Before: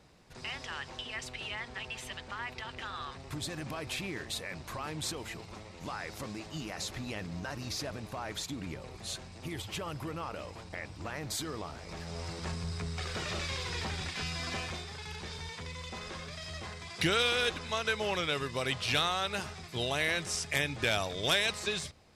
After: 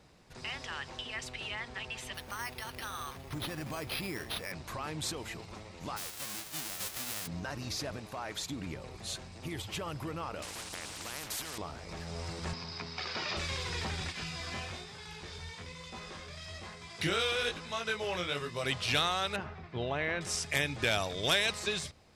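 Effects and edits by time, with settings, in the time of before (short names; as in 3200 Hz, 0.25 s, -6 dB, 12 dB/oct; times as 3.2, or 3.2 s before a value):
2.14–4.52 careless resampling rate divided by 6×, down none, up hold
5.96–7.26 spectral whitening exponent 0.1
7.99–8.43 low shelf 220 Hz -6.5 dB
10.42–11.58 spectral compressor 4:1
12.53–13.37 speaker cabinet 170–5600 Hz, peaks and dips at 170 Hz -5 dB, 460 Hz -5 dB, 930 Hz +5 dB, 2400 Hz +3 dB, 4900 Hz +7 dB
14.12–18.64 chorus 1.1 Hz, delay 17 ms, depth 5.7 ms
19.36–20.21 LPF 1900 Hz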